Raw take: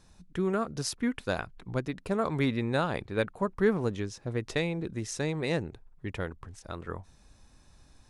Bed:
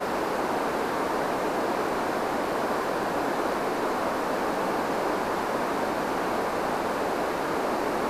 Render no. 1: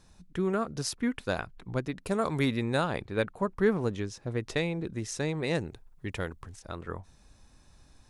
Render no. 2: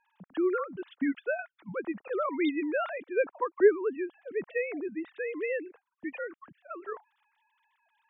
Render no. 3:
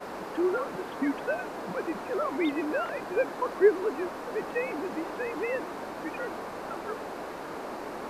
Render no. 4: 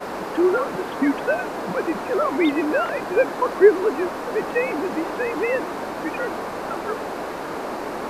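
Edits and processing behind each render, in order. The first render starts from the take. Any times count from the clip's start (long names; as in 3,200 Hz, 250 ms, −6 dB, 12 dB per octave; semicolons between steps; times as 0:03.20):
0:02.05–0:02.84: high-shelf EQ 5,200 Hz → 8,100 Hz +11.5 dB; 0:05.55–0:06.56: high-shelf EQ 3,900 Hz +8.5 dB
three sine waves on the formant tracks
mix in bed −10.5 dB
level +8.5 dB; brickwall limiter −3 dBFS, peak gain reduction 1 dB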